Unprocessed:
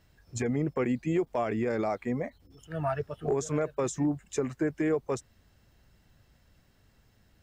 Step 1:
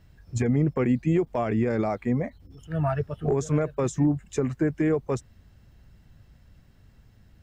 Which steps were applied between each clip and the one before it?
bass and treble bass +8 dB, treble −3 dB
level +2 dB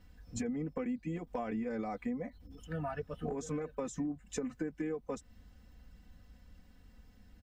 comb filter 4 ms, depth 92%
downward compressor 6 to 1, threshold −29 dBFS, peak gain reduction 14 dB
level −5.5 dB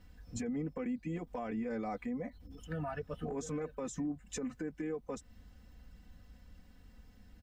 brickwall limiter −31 dBFS, peak gain reduction 6.5 dB
level +1 dB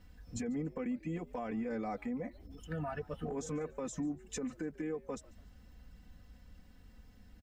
echo with shifted repeats 144 ms, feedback 31%, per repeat +79 Hz, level −23 dB

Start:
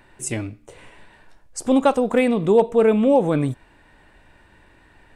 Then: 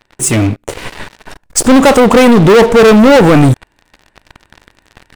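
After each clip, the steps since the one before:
leveller curve on the samples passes 5
automatic gain control gain up to 7.5 dB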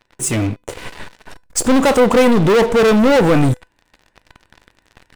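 tuned comb filter 500 Hz, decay 0.22 s, harmonics all, mix 50%
level −1.5 dB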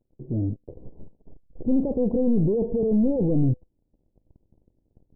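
Gaussian smoothing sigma 19 samples
level −5.5 dB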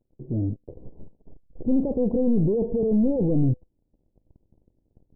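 no processing that can be heard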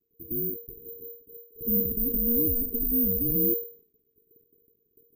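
frequency shifter −470 Hz
bad sample-rate conversion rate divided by 3×, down none, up zero stuff
level that may fall only so fast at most 130 dB per second
level −9 dB

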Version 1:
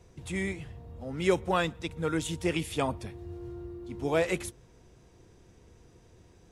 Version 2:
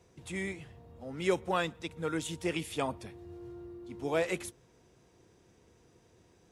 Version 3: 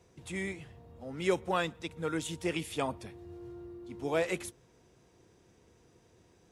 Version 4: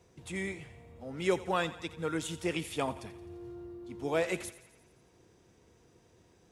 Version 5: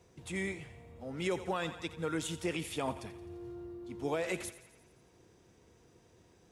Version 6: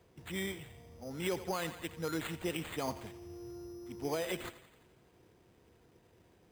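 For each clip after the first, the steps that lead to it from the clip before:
high-pass filter 160 Hz 6 dB per octave; level −3 dB
no processing that can be heard
feedback echo with a high-pass in the loop 86 ms, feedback 61%, high-pass 420 Hz, level −15.5 dB
brickwall limiter −24 dBFS, peak gain reduction 7.5 dB
bad sample-rate conversion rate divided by 8×, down none, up hold; level −1.5 dB

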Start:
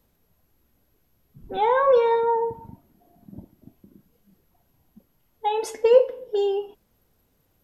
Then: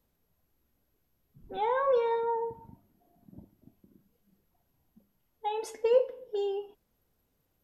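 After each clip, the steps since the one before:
hum removal 100.5 Hz, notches 2
level −8.5 dB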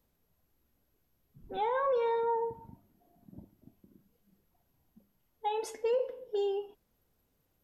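brickwall limiter −23 dBFS, peak gain reduction 9 dB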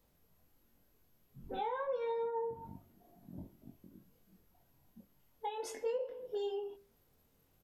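mains-hum notches 50/100/150/200/250/300/350/400 Hz
downward compressor 3 to 1, threshold −42 dBFS, peak gain reduction 12 dB
double-tracking delay 22 ms −3 dB
level +2 dB

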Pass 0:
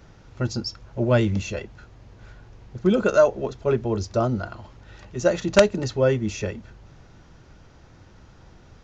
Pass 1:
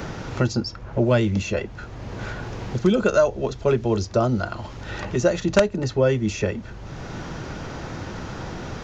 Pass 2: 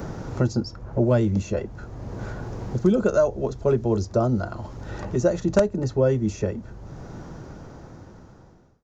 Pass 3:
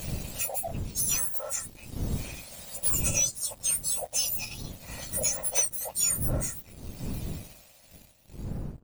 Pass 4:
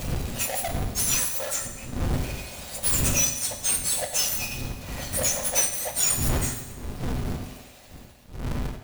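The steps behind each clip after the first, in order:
multiband upward and downward compressor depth 70%; level +2.5 dB
fade-out on the ending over 2.67 s; parametric band 2,800 Hz −13 dB 1.9 octaves
frequency axis turned over on the octave scale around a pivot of 1,900 Hz; wind on the microphone 150 Hz −39 dBFS; leveller curve on the samples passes 2; level −6 dB
each half-wave held at its own peak; on a send at −5 dB: convolution reverb RT60 1.2 s, pre-delay 4 ms

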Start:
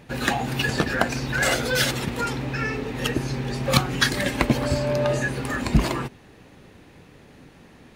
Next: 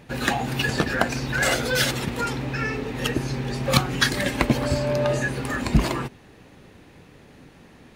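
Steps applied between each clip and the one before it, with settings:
no processing that can be heard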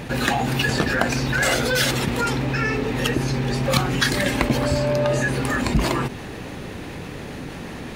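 envelope flattener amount 50%
level −2.5 dB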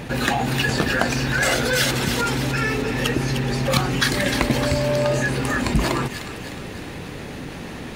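delay with a high-pass on its return 304 ms, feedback 52%, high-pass 1,800 Hz, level −6.5 dB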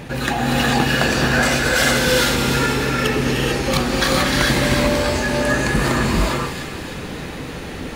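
reverb whose tail is shaped and stops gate 470 ms rising, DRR −3.5 dB
level −1 dB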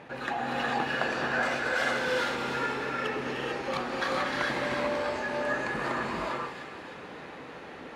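resonant band-pass 970 Hz, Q 0.68
level −8 dB

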